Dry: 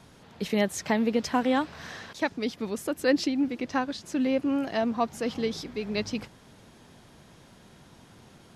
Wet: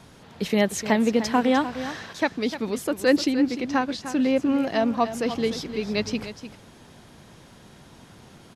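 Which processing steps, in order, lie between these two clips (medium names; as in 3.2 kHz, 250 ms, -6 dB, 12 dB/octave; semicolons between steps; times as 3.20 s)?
delay 301 ms -11.5 dB; trim +4 dB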